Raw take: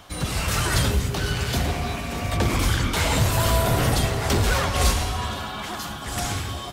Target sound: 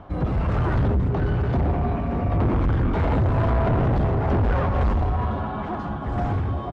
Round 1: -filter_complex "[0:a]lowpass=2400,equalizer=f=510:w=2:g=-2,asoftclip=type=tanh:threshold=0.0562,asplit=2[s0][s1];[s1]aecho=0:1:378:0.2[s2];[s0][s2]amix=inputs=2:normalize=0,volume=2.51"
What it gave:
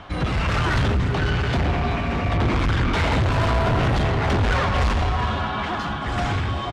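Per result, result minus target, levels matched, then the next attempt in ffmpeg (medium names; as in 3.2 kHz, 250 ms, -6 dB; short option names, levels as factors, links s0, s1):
2 kHz band +9.0 dB; echo-to-direct +12 dB
-filter_complex "[0:a]lowpass=830,equalizer=f=510:w=2:g=-2,asoftclip=type=tanh:threshold=0.0562,asplit=2[s0][s1];[s1]aecho=0:1:378:0.2[s2];[s0][s2]amix=inputs=2:normalize=0,volume=2.51"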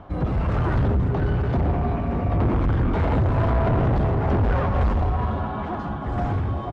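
echo-to-direct +12 dB
-filter_complex "[0:a]lowpass=830,equalizer=f=510:w=2:g=-2,asoftclip=type=tanh:threshold=0.0562,asplit=2[s0][s1];[s1]aecho=0:1:378:0.0501[s2];[s0][s2]amix=inputs=2:normalize=0,volume=2.51"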